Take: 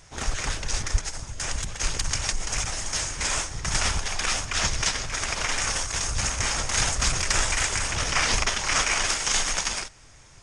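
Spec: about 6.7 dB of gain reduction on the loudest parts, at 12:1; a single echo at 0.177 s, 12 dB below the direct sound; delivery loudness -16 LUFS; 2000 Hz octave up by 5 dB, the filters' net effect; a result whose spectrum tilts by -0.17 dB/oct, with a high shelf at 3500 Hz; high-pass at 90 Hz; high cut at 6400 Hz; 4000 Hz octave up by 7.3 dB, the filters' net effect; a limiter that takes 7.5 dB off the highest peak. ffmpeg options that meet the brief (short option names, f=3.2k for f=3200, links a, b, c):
-af "highpass=90,lowpass=6.4k,equalizer=f=2k:t=o:g=3,highshelf=f=3.5k:g=3,equalizer=f=4k:t=o:g=8,acompressor=threshold=-22dB:ratio=12,alimiter=limit=-16dB:level=0:latency=1,aecho=1:1:177:0.251,volume=10dB"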